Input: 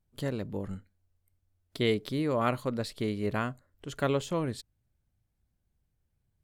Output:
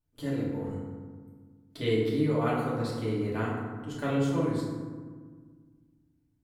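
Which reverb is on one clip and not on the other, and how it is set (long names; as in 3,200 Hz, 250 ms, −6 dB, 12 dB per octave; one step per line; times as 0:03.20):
feedback delay network reverb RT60 1.6 s, low-frequency decay 1.5×, high-frequency decay 0.45×, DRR −7 dB
level −8.5 dB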